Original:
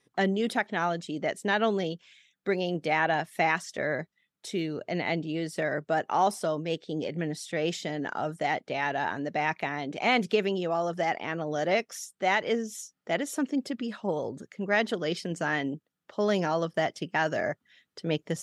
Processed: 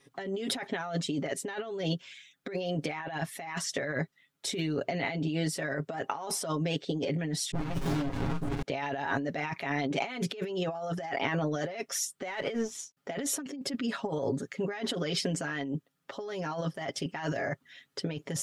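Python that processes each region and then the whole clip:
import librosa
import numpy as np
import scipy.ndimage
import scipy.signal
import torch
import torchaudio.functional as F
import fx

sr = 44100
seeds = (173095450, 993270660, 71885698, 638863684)

y = fx.chain(x, sr, fx.doubler(ms=17.0, db=-3.0),
    fx.dispersion(late='highs', ms=95.0, hz=690.0),
    fx.running_max(window=65), at=(7.51, 8.62))
y = fx.chain(y, sr, fx.law_mismatch(coded='A'),
    fx.air_absorb(metres=52.0), at=(12.29, 12.97))
y = y + 0.74 * np.pad(y, (int(7.3 * sr / 1000.0), 0))[:len(y)]
y = fx.over_compress(y, sr, threshold_db=-33.0, ratio=-1.0)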